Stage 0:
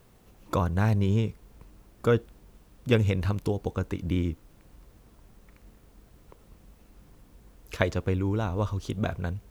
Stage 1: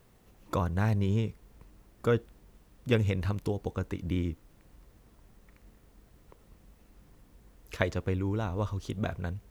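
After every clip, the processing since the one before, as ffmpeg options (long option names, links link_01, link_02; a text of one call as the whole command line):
ffmpeg -i in.wav -af "equalizer=frequency=1900:width_type=o:width=0.21:gain=3,volume=-3.5dB" out.wav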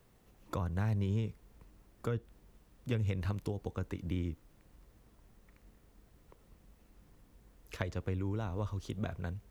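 ffmpeg -i in.wav -filter_complex "[0:a]acrossover=split=160[link_01][link_02];[link_02]acompressor=threshold=-31dB:ratio=5[link_03];[link_01][link_03]amix=inputs=2:normalize=0,volume=-4dB" out.wav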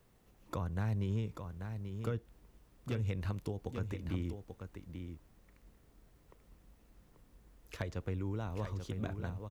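ffmpeg -i in.wav -af "asoftclip=type=hard:threshold=-24.5dB,aecho=1:1:837:0.422,volume=-2dB" out.wav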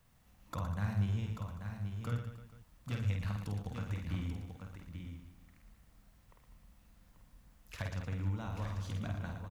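ffmpeg -i in.wav -af "equalizer=frequency=390:width=1.7:gain=-14,aecho=1:1:50|115|199.5|309.4|452.2:0.631|0.398|0.251|0.158|0.1" out.wav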